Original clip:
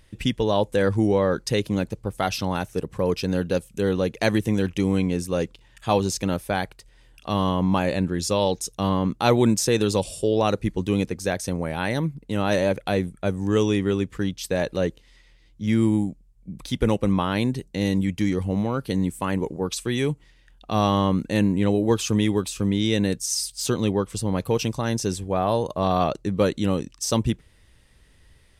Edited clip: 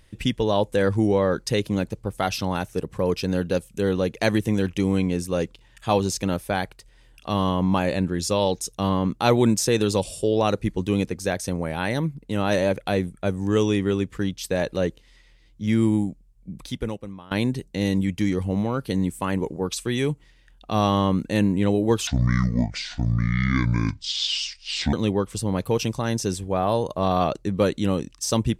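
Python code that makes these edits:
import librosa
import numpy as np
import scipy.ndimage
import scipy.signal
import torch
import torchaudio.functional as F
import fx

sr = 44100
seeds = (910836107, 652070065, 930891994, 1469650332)

y = fx.edit(x, sr, fx.fade_out_to(start_s=16.56, length_s=0.75, curve='qua', floor_db=-21.0),
    fx.speed_span(start_s=22.07, length_s=1.66, speed=0.58), tone=tone)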